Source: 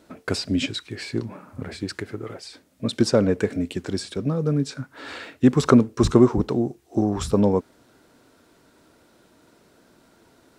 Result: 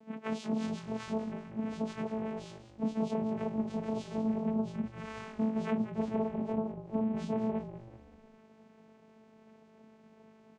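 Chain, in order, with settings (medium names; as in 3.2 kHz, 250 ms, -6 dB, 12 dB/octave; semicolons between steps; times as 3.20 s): phase randomisation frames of 100 ms; peaking EQ 3.8 kHz -13.5 dB 0.25 oct; compression 8:1, threshold -29 dBFS, peak gain reduction 19 dB; vocoder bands 4, saw 220 Hz; on a send: frequency-shifting echo 191 ms, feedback 42%, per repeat -50 Hz, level -12.5 dB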